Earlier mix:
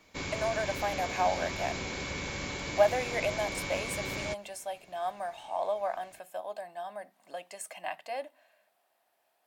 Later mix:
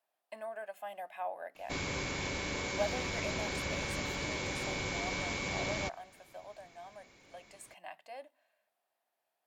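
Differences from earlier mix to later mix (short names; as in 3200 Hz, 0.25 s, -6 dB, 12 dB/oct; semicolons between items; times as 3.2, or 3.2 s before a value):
speech -10.5 dB; background: entry +1.55 s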